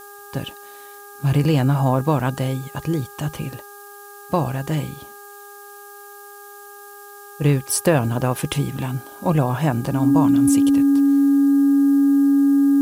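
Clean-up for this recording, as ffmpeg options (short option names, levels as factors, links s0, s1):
-af "bandreject=f=406.7:t=h:w=4,bandreject=f=813.4:t=h:w=4,bandreject=f=1220.1:t=h:w=4,bandreject=f=1626.8:t=h:w=4,bandreject=f=280:w=30,afftdn=nr=24:nf=-41"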